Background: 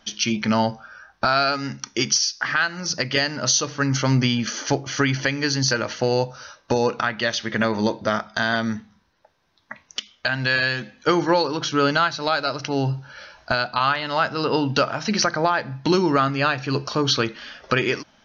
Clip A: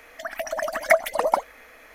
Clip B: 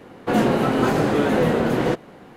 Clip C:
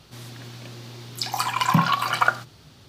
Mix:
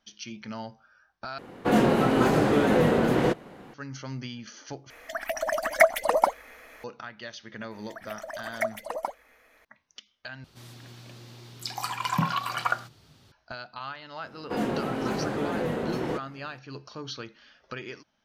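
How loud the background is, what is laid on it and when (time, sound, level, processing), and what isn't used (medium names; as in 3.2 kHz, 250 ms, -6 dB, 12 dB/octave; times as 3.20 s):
background -17.5 dB
1.38 s: replace with B -2.5 dB
4.90 s: replace with A -0.5 dB
7.71 s: add A -11 dB
10.44 s: replace with C -7 dB
14.23 s: add B -10.5 dB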